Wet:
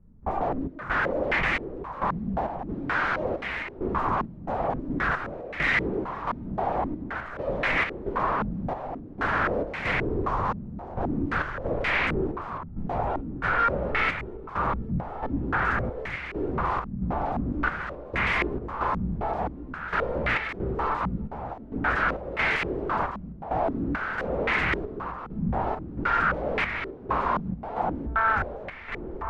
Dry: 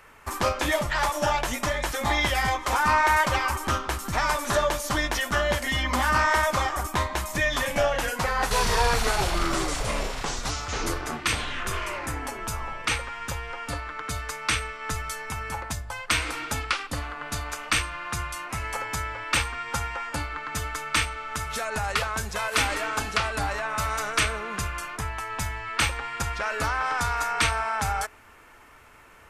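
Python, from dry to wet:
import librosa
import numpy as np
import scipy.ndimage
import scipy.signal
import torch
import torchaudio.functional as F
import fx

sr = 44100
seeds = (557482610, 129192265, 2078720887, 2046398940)

p1 = fx.low_shelf(x, sr, hz=93.0, db=10.5)
p2 = fx.over_compress(p1, sr, threshold_db=-32.0, ratio=-1.0)
p3 = p1 + (p2 * 10.0 ** (0.5 / 20.0))
p4 = p3 + 10.0 ** (-6.0 / 20.0) * np.pad(p3, (int(551 * sr / 1000.0), 0))[:len(p3)]
p5 = 10.0 ** (-23.5 / 20.0) * (np.abs((p4 / 10.0 ** (-23.5 / 20.0) + 3.0) % 4.0 - 2.0) - 1.0)
p6 = fx.step_gate(p5, sr, bpm=67, pattern='.xx.xxx.', floor_db=-12.0, edge_ms=4.5)
p7 = p6 + fx.echo_single(p6, sr, ms=1158, db=-9.0, dry=0)
y = fx.filter_held_lowpass(p7, sr, hz=3.8, low_hz=200.0, high_hz=2100.0)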